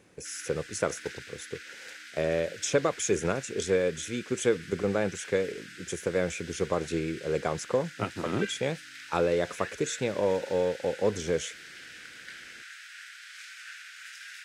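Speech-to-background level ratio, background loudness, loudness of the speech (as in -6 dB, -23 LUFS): 14.0 dB, -44.0 LUFS, -30.0 LUFS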